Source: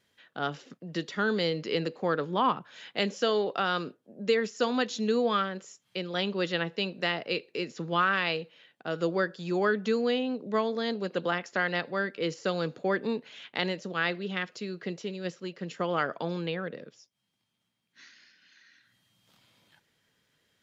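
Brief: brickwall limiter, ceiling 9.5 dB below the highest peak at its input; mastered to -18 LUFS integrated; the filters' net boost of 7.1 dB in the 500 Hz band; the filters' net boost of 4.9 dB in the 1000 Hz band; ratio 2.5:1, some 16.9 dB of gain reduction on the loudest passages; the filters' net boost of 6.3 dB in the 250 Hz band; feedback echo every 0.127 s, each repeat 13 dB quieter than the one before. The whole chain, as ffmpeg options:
-af "equalizer=f=250:t=o:g=6.5,equalizer=f=500:t=o:g=5.5,equalizer=f=1k:t=o:g=4.5,acompressor=threshold=-41dB:ratio=2.5,alimiter=level_in=5dB:limit=-24dB:level=0:latency=1,volume=-5dB,aecho=1:1:127|254|381:0.224|0.0493|0.0108,volume=22dB"

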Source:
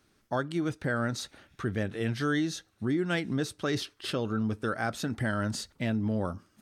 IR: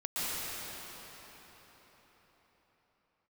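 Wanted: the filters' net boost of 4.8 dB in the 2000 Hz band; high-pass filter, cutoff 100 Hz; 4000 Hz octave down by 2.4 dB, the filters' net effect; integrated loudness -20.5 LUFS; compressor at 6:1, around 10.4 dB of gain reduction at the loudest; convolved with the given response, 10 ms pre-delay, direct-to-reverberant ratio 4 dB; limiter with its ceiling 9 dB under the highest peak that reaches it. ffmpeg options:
-filter_complex "[0:a]highpass=100,equalizer=f=2k:t=o:g=7.5,equalizer=f=4k:t=o:g=-5.5,acompressor=threshold=-35dB:ratio=6,alimiter=level_in=6dB:limit=-24dB:level=0:latency=1,volume=-6dB,asplit=2[a][b];[1:a]atrim=start_sample=2205,adelay=10[c];[b][c]afir=irnorm=-1:irlink=0,volume=-12dB[d];[a][d]amix=inputs=2:normalize=0,volume=19.5dB"

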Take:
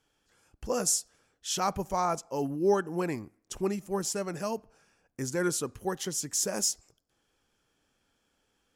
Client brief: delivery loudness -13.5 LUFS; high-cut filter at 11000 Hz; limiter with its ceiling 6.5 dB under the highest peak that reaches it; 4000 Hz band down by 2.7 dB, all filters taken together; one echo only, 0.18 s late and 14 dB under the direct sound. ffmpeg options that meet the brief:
-af "lowpass=11k,equalizer=f=4k:t=o:g=-4,alimiter=limit=-21.5dB:level=0:latency=1,aecho=1:1:180:0.2,volume=19.5dB"

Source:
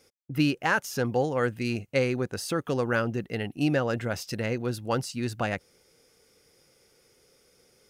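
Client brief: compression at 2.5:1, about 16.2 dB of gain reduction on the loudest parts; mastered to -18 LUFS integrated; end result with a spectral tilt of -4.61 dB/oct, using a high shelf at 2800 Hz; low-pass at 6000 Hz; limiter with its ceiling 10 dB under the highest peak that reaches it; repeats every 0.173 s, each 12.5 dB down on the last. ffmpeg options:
-af "lowpass=6k,highshelf=f=2.8k:g=7.5,acompressor=threshold=-45dB:ratio=2.5,alimiter=level_in=9.5dB:limit=-24dB:level=0:latency=1,volume=-9.5dB,aecho=1:1:173|346|519:0.237|0.0569|0.0137,volume=26dB"

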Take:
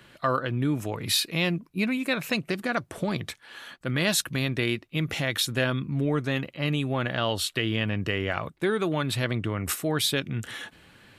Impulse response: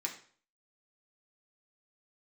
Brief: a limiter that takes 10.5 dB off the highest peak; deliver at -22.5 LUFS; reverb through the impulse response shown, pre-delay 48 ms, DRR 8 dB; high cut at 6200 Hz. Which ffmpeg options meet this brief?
-filter_complex "[0:a]lowpass=6.2k,alimiter=limit=-21dB:level=0:latency=1,asplit=2[a][b];[1:a]atrim=start_sample=2205,adelay=48[c];[b][c]afir=irnorm=-1:irlink=0,volume=-9.5dB[d];[a][d]amix=inputs=2:normalize=0,volume=8.5dB"

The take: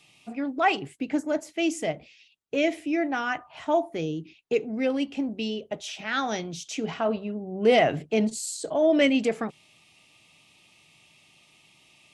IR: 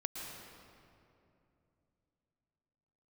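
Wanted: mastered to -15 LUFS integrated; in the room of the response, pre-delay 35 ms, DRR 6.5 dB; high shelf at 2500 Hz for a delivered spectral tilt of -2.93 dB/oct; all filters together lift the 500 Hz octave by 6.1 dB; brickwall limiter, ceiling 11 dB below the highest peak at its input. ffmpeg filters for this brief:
-filter_complex "[0:a]equalizer=f=500:t=o:g=8,highshelf=f=2.5k:g=-7.5,alimiter=limit=-14dB:level=0:latency=1,asplit=2[a][b];[1:a]atrim=start_sample=2205,adelay=35[c];[b][c]afir=irnorm=-1:irlink=0,volume=-7dB[d];[a][d]amix=inputs=2:normalize=0,volume=10dB"

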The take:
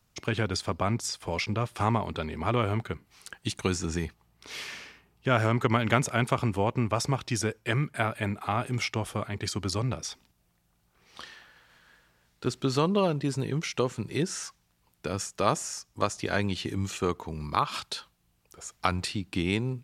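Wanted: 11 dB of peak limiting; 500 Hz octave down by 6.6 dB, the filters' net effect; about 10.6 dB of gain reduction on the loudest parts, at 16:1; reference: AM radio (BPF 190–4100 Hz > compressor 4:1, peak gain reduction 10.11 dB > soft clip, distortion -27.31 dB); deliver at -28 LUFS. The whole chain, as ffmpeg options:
-af "equalizer=f=500:t=o:g=-8.5,acompressor=threshold=-31dB:ratio=16,alimiter=limit=-24dB:level=0:latency=1,highpass=190,lowpass=4.1k,acompressor=threshold=-43dB:ratio=4,asoftclip=threshold=-30dB,volume=19.5dB"

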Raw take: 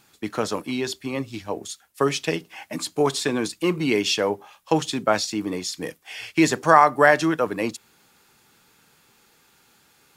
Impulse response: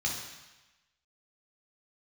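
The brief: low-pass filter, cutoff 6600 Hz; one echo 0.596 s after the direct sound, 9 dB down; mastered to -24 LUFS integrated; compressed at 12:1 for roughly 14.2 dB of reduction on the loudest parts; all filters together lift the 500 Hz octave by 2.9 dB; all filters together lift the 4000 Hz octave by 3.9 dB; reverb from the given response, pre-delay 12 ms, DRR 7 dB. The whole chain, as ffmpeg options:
-filter_complex "[0:a]lowpass=6.6k,equalizer=f=500:t=o:g=3.5,equalizer=f=4k:t=o:g=5.5,acompressor=threshold=-22dB:ratio=12,aecho=1:1:596:0.355,asplit=2[a][b];[1:a]atrim=start_sample=2205,adelay=12[c];[b][c]afir=irnorm=-1:irlink=0,volume=-13dB[d];[a][d]amix=inputs=2:normalize=0,volume=3.5dB"

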